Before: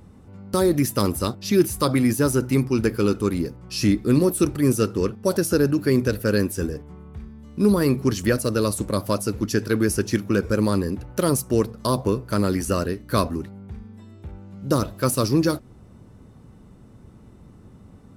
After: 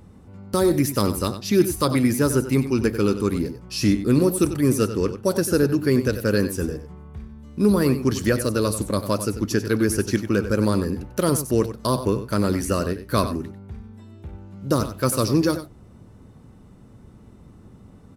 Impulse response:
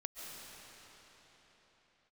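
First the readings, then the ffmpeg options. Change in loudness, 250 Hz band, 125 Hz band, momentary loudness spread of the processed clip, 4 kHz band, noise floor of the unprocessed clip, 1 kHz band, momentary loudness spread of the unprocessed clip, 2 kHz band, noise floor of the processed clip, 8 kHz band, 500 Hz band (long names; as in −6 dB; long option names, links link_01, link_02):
+0.5 dB, +0.5 dB, 0.0 dB, 12 LU, +0.5 dB, −48 dBFS, +0.5 dB, 13 LU, +0.5 dB, −48 dBFS, +0.5 dB, +0.5 dB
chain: -af "aecho=1:1:94:0.266"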